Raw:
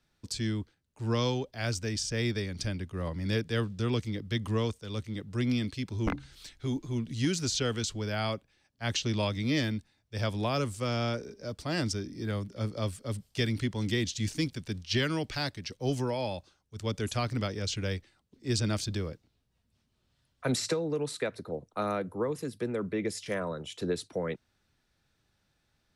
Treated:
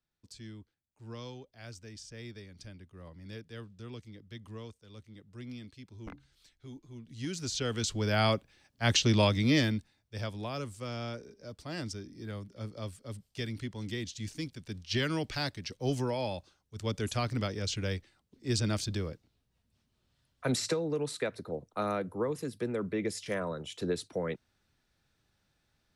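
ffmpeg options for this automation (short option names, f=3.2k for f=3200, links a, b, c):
-af "volume=11.5dB,afade=t=in:st=7.03:d=0.67:silence=0.237137,afade=t=in:st=7.7:d=0.51:silence=0.421697,afade=t=out:st=9.23:d=1.09:silence=0.237137,afade=t=in:st=14.56:d=0.59:silence=0.473151"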